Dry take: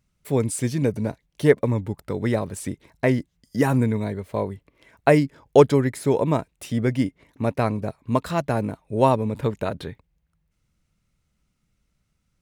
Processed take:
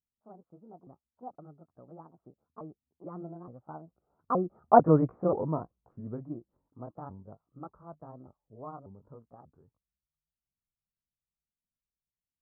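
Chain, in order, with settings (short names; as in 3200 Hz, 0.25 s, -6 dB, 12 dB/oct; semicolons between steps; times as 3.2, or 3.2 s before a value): repeated pitch sweeps +7 st, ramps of 0.512 s; Doppler pass-by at 4.94, 52 m/s, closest 11 m; Chebyshev low-pass 1300 Hz, order 5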